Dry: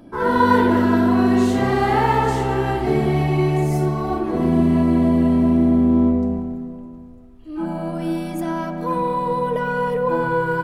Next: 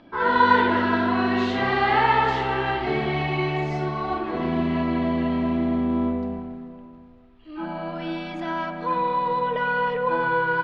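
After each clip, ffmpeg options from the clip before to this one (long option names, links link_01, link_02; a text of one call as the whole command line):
ffmpeg -i in.wav -af "lowpass=frequency=3900:width=0.5412,lowpass=frequency=3900:width=1.3066,tiltshelf=frequency=760:gain=-7.5,volume=-2dB" out.wav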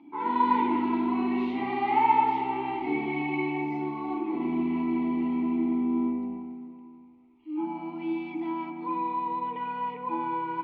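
ffmpeg -i in.wav -filter_complex "[0:a]asplit=3[link_01][link_02][link_03];[link_01]bandpass=frequency=300:width_type=q:width=8,volume=0dB[link_04];[link_02]bandpass=frequency=870:width_type=q:width=8,volume=-6dB[link_05];[link_03]bandpass=frequency=2240:width_type=q:width=8,volume=-9dB[link_06];[link_04][link_05][link_06]amix=inputs=3:normalize=0,volume=6.5dB" out.wav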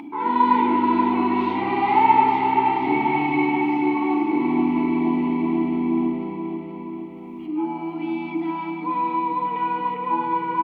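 ffmpeg -i in.wav -filter_complex "[0:a]acompressor=mode=upward:threshold=-36dB:ratio=2.5,asplit=2[link_01][link_02];[link_02]aecho=0:1:479|958|1437|1916|2395|2874|3353|3832:0.531|0.313|0.185|0.109|0.0643|0.038|0.0224|0.0132[link_03];[link_01][link_03]amix=inputs=2:normalize=0,volume=6dB" out.wav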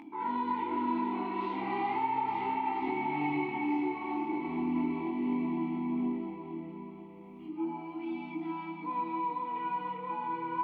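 ffmpeg -i in.wav -af "alimiter=limit=-12.5dB:level=0:latency=1:release=188,flanger=delay=19:depth=7.1:speed=0.35,volume=-7.5dB" out.wav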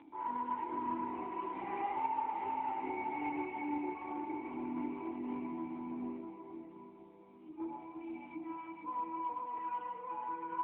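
ffmpeg -i in.wav -filter_complex "[0:a]aeval=exprs='0.0944*(cos(1*acos(clip(val(0)/0.0944,-1,1)))-cos(1*PI/2))+0.00841*(cos(3*acos(clip(val(0)/0.0944,-1,1)))-cos(3*PI/2))':channel_layout=same,acrossover=split=270 3000:gain=0.178 1 0.0708[link_01][link_02][link_03];[link_01][link_02][link_03]amix=inputs=3:normalize=0,volume=-2dB" -ar 8000 -c:a libopencore_amrnb -b:a 10200 out.amr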